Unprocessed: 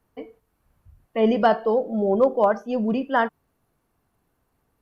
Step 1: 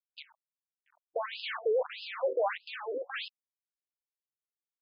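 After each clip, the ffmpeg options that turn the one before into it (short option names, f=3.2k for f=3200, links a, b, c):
-af "aeval=exprs='(tanh(22.4*val(0)+0.4)-tanh(0.4))/22.4':c=same,acrusher=bits=6:dc=4:mix=0:aa=0.000001,afftfilt=real='re*between(b*sr/1024,420*pow(3700/420,0.5+0.5*sin(2*PI*1.6*pts/sr))/1.41,420*pow(3700/420,0.5+0.5*sin(2*PI*1.6*pts/sr))*1.41)':imag='im*between(b*sr/1024,420*pow(3700/420,0.5+0.5*sin(2*PI*1.6*pts/sr))/1.41,420*pow(3700/420,0.5+0.5*sin(2*PI*1.6*pts/sr))*1.41)':win_size=1024:overlap=0.75,volume=2.5dB"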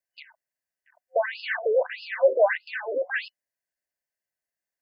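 -af "superequalizer=8b=2.51:10b=0.501:11b=2.82:13b=0.398,volume=4dB"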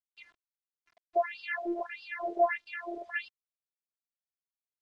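-af "afftfilt=real='hypot(re,im)*cos(PI*b)':imag='0':win_size=512:overlap=0.75,acrusher=bits=9:mix=0:aa=0.000001,lowpass=4.4k,volume=-2.5dB"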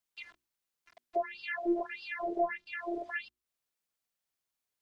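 -filter_complex "[0:a]bandreject=f=60:t=h:w=6,bandreject=f=120:t=h:w=6,bandreject=f=180:t=h:w=6,bandreject=f=240:t=h:w=6,bandreject=f=300:t=h:w=6,bandreject=f=360:t=h:w=6,acrossover=split=330[a][b];[b]acompressor=threshold=-51dB:ratio=2[c];[a][c]amix=inputs=2:normalize=0,volume=8dB"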